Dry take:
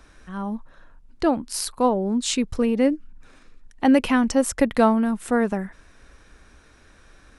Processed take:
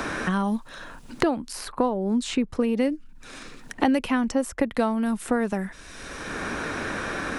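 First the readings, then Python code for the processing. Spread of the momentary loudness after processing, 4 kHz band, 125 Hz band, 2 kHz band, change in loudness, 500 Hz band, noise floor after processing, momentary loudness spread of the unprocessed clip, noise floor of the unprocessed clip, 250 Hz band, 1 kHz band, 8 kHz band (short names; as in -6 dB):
18 LU, -3.0 dB, n/a, +2.0 dB, -4.0 dB, -3.5 dB, -46 dBFS, 13 LU, -53 dBFS, -3.0 dB, -2.5 dB, -7.0 dB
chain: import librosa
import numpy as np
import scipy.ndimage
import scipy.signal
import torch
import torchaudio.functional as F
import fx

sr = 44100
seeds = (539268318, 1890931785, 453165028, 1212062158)

y = fx.band_squash(x, sr, depth_pct=100)
y = y * librosa.db_to_amplitude(-3.0)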